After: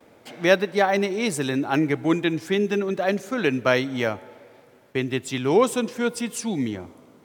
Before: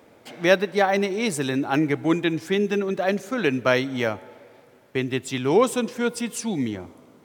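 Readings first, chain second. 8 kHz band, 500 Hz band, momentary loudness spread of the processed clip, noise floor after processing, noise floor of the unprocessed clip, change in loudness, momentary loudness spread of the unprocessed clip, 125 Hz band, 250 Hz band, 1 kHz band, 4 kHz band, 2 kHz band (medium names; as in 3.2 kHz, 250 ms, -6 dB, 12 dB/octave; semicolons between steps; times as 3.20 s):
0.0 dB, 0.0 dB, 8 LU, -53 dBFS, -53 dBFS, 0.0 dB, 8 LU, 0.0 dB, 0.0 dB, 0.0 dB, 0.0 dB, 0.0 dB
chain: gate with hold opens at -46 dBFS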